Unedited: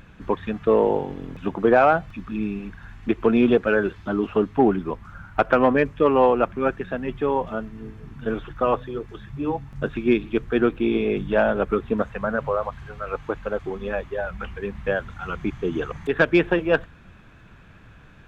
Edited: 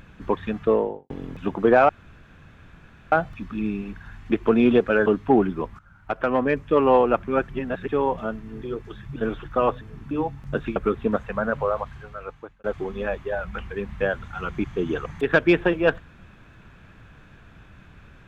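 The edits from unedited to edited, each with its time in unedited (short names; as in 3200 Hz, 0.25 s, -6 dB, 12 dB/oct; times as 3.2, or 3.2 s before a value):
0.59–1.1 studio fade out
1.89 insert room tone 1.23 s
3.83–4.35 cut
5.08–6.14 fade in, from -16 dB
6.78–7.18 reverse
7.91–8.21 swap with 8.86–9.4
10.05–11.62 cut
12.66–13.5 fade out linear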